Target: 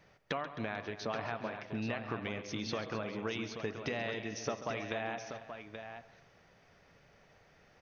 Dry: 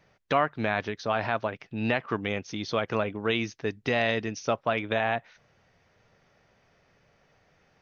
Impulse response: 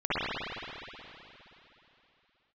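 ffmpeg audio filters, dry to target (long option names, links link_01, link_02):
-filter_complex "[0:a]bandreject=frequency=127.2:width_type=h:width=4,bandreject=frequency=254.4:width_type=h:width=4,bandreject=frequency=381.6:width_type=h:width=4,bandreject=frequency=508.8:width_type=h:width=4,bandreject=frequency=636:width_type=h:width=4,bandreject=frequency=763.2:width_type=h:width=4,bandreject=frequency=890.4:width_type=h:width=4,bandreject=frequency=1017.6:width_type=h:width=4,bandreject=frequency=1144.8:width_type=h:width=4,bandreject=frequency=1272:width_type=h:width=4,acompressor=threshold=-35dB:ratio=6,aecho=1:1:135|263|442|829:0.211|0.188|0.133|0.376,asplit=2[link_01][link_02];[1:a]atrim=start_sample=2205,afade=type=out:start_time=0.35:duration=0.01,atrim=end_sample=15876[link_03];[link_02][link_03]afir=irnorm=-1:irlink=0,volume=-29.5dB[link_04];[link_01][link_04]amix=inputs=2:normalize=0"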